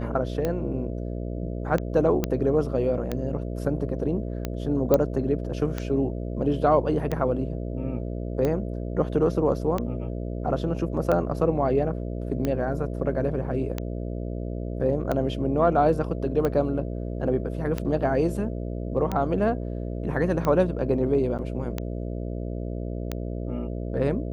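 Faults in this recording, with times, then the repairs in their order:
buzz 60 Hz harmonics 11 -31 dBFS
tick 45 rpm -14 dBFS
2.24 s: pop -10 dBFS
4.94 s: pop -8 dBFS
21.38–21.39 s: dropout 8.4 ms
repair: de-click; de-hum 60 Hz, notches 11; interpolate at 21.38 s, 8.4 ms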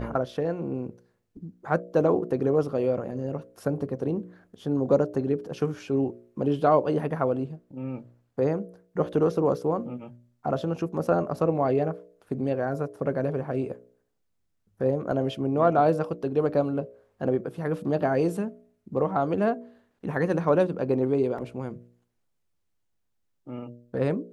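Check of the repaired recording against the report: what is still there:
nothing left

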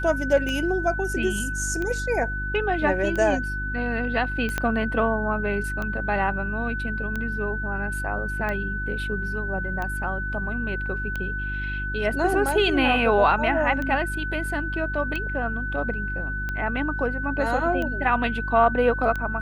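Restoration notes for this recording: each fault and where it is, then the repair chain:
hum 50 Hz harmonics 7 -31 dBFS
tick 45 rpm -17 dBFS
whine 1.5 kHz -29 dBFS
4.58 s: pop -10 dBFS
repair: de-click; de-hum 50 Hz, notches 7; band-stop 1.5 kHz, Q 30

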